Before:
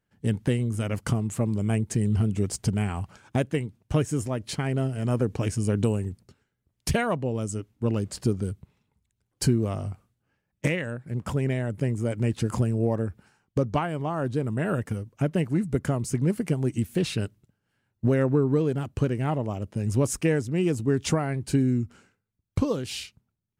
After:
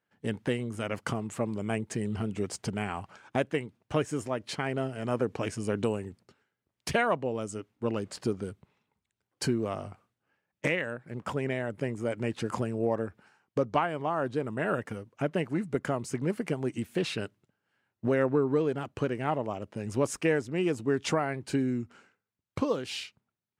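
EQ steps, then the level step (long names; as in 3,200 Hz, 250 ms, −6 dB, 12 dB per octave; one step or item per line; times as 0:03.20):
high-pass filter 630 Hz 6 dB per octave
low-pass filter 2,400 Hz 6 dB per octave
+3.5 dB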